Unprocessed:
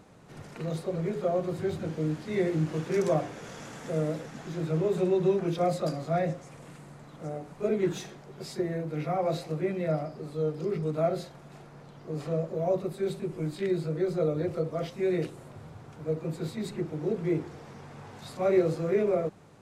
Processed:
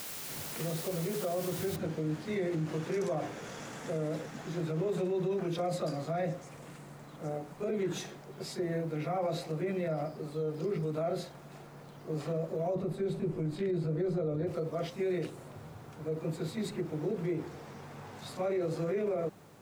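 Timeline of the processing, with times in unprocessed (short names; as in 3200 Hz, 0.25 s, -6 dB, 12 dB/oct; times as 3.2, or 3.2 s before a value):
1.76 noise floor step -42 dB -70 dB
12.75–14.47 tilt -2 dB/oct
whole clip: limiter -25 dBFS; low shelf 94 Hz -6 dB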